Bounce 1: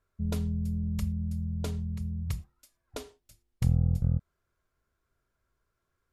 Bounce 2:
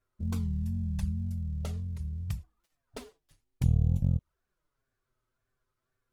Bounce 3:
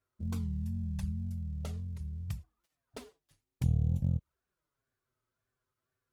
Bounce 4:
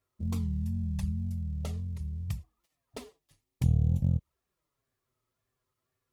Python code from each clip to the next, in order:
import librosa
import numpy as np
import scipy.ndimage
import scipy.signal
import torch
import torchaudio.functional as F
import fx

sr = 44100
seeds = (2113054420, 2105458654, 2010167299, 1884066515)

y1 = fx.dead_time(x, sr, dead_ms=0.081)
y1 = fx.wow_flutter(y1, sr, seeds[0], rate_hz=2.1, depth_cents=150.0)
y1 = fx.env_flanger(y1, sr, rest_ms=7.9, full_db=-22.5)
y2 = scipy.signal.sosfilt(scipy.signal.butter(2, 53.0, 'highpass', fs=sr, output='sos'), y1)
y2 = y2 * librosa.db_to_amplitude(-3.0)
y3 = fx.notch(y2, sr, hz=1500.0, q=5.8)
y3 = y3 * librosa.db_to_amplitude(3.5)